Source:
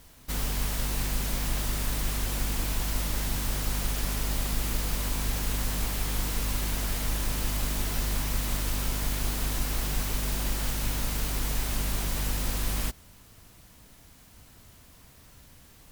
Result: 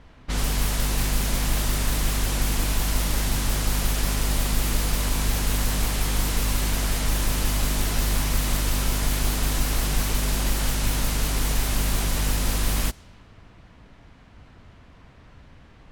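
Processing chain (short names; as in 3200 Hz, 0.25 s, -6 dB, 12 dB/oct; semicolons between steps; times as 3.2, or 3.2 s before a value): low-pass opened by the level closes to 2200 Hz, open at -24 dBFS; gain +6 dB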